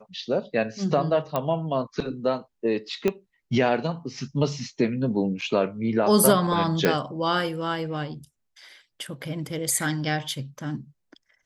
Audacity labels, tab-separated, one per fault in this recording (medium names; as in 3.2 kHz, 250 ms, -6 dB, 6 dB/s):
1.360000	1.360000	pop -12 dBFS
3.080000	3.080000	pop -11 dBFS
5.410000	5.420000	dropout 6.3 ms
6.850000	6.850000	pop -7 dBFS
9.710000	9.710000	dropout 2.5 ms